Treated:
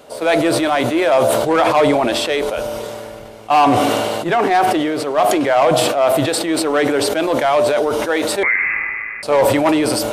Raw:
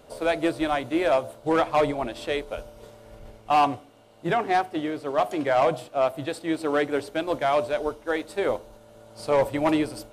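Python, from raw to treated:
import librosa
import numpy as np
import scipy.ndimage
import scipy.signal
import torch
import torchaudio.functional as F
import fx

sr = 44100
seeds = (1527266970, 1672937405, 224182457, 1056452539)

p1 = fx.highpass(x, sr, hz=270.0, slope=6)
p2 = np.clip(p1, -10.0 ** (-28.0 / 20.0), 10.0 ** (-28.0 / 20.0))
p3 = p1 + (p2 * 10.0 ** (-7.0 / 20.0))
p4 = fx.freq_invert(p3, sr, carrier_hz=2600, at=(8.43, 9.23))
p5 = fx.sustainer(p4, sr, db_per_s=21.0)
y = p5 * 10.0 ** (6.5 / 20.0)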